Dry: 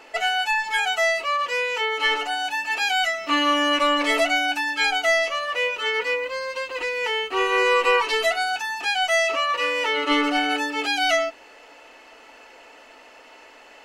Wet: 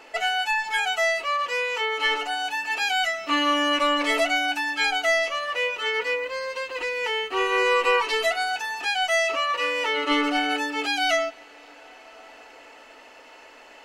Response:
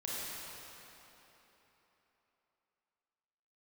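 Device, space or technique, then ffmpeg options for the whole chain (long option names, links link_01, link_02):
ducked reverb: -filter_complex "[0:a]asplit=3[link_01][link_02][link_03];[1:a]atrim=start_sample=2205[link_04];[link_02][link_04]afir=irnorm=-1:irlink=0[link_05];[link_03]apad=whole_len=610633[link_06];[link_05][link_06]sidechaincompress=threshold=-34dB:ratio=8:attack=16:release=995,volume=-11.5dB[link_07];[link_01][link_07]amix=inputs=2:normalize=0,volume=-2dB"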